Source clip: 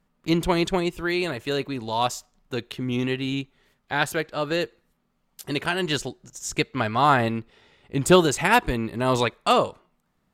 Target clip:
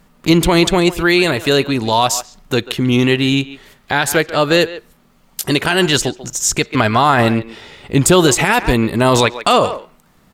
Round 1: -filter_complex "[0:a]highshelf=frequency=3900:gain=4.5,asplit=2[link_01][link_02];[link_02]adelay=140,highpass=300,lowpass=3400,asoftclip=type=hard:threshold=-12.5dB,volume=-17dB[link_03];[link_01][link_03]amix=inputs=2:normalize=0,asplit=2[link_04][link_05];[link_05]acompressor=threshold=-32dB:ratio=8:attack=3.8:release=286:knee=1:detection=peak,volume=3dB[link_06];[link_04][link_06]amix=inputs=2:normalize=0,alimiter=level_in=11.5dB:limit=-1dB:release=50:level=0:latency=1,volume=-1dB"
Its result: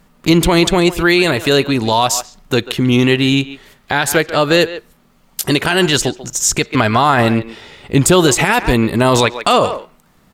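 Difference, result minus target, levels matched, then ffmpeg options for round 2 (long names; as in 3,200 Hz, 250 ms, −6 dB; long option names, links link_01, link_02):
downward compressor: peak gain reduction −5.5 dB
-filter_complex "[0:a]highshelf=frequency=3900:gain=4.5,asplit=2[link_01][link_02];[link_02]adelay=140,highpass=300,lowpass=3400,asoftclip=type=hard:threshold=-12.5dB,volume=-17dB[link_03];[link_01][link_03]amix=inputs=2:normalize=0,asplit=2[link_04][link_05];[link_05]acompressor=threshold=-38.5dB:ratio=8:attack=3.8:release=286:knee=1:detection=peak,volume=3dB[link_06];[link_04][link_06]amix=inputs=2:normalize=0,alimiter=level_in=11.5dB:limit=-1dB:release=50:level=0:latency=1,volume=-1dB"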